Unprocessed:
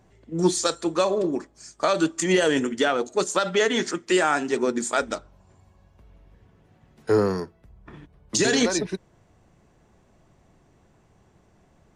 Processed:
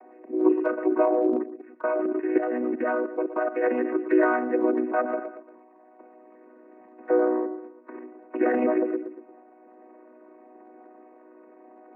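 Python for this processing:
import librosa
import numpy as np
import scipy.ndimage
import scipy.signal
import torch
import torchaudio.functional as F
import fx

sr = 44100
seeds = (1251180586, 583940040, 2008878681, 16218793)

y = fx.chord_vocoder(x, sr, chord='major triad', root=59)
y = scipy.signal.sosfilt(scipy.signal.butter(16, 2500.0, 'lowpass', fs=sr, output='sos'), y)
y = fx.peak_eq(y, sr, hz=620.0, db=7.5, octaves=1.3)
y = fx.echo_feedback(y, sr, ms=116, feedback_pct=38, wet_db=-15.0)
y = fx.transient(y, sr, attack_db=1, sustain_db=7)
y = fx.hum_notches(y, sr, base_hz=60, count=6)
y = fx.level_steps(y, sr, step_db=12, at=(1.37, 3.64))
y = scipy.signal.sosfilt(scipy.signal.butter(4, 180.0, 'highpass', fs=sr, output='sos'), y)
y = fx.low_shelf(y, sr, hz=240.0, db=-9.5)
y = fx.band_squash(y, sr, depth_pct=40)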